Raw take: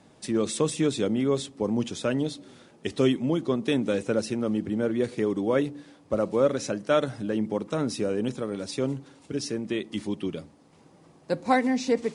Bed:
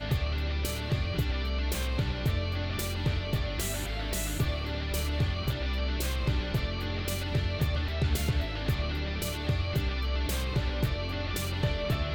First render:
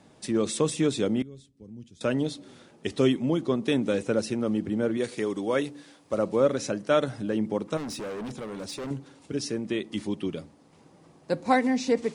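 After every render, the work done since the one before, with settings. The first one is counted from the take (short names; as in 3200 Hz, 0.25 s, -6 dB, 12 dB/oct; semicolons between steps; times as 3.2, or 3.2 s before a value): 1.22–2.01 passive tone stack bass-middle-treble 10-0-1; 4.97–6.18 tilt +2 dB/oct; 7.77–8.91 overloaded stage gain 32.5 dB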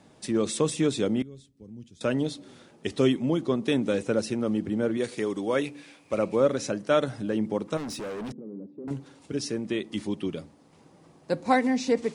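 5.63–6.35 bell 2400 Hz +14.5 dB 0.3 oct; 8.32–8.88 Butterworth band-pass 260 Hz, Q 1.2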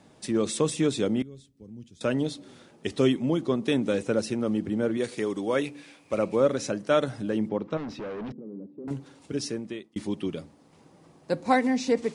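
7.49–8.86 air absorption 210 m; 9.45–9.96 fade out linear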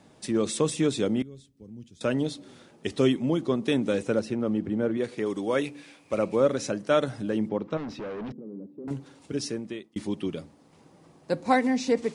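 4.19–5.26 high shelf 4200 Hz -12 dB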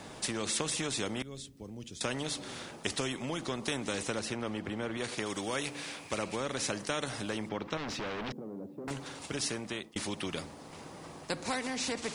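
compressor 2.5:1, threshold -27 dBFS, peak gain reduction 7.5 dB; spectral compressor 2:1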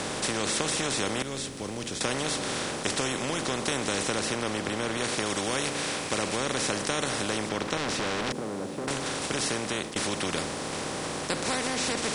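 per-bin compression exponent 0.4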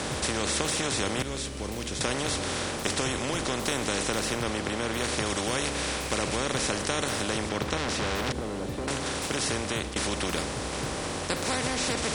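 add bed -10 dB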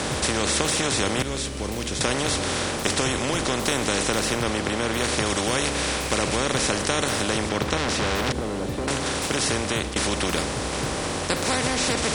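gain +5 dB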